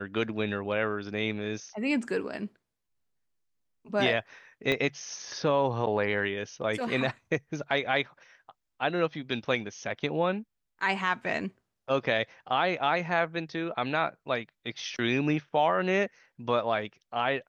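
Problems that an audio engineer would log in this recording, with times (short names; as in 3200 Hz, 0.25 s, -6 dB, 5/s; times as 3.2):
4.72 pop -15 dBFS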